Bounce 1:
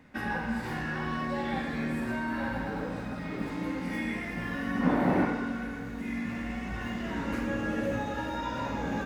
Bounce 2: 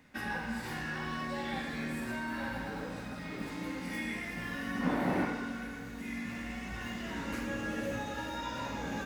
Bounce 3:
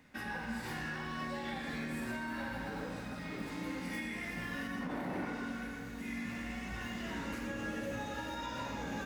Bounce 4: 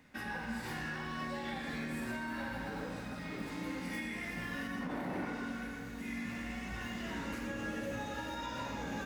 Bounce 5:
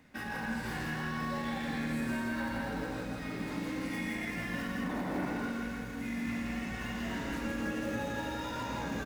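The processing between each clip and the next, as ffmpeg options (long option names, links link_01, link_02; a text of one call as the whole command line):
ffmpeg -i in.wav -af "highshelf=frequency=2500:gain=10,volume=-6dB" out.wav
ffmpeg -i in.wav -af "alimiter=level_in=5dB:limit=-24dB:level=0:latency=1:release=114,volume=-5dB,volume=-1dB" out.wav
ffmpeg -i in.wav -af anull out.wav
ffmpeg -i in.wav -filter_complex "[0:a]asplit=2[link_01][link_02];[link_02]acrusher=samples=18:mix=1:aa=0.000001:lfo=1:lforange=28.8:lforate=3.6,volume=-10.5dB[link_03];[link_01][link_03]amix=inputs=2:normalize=0,aecho=1:1:167:0.708" out.wav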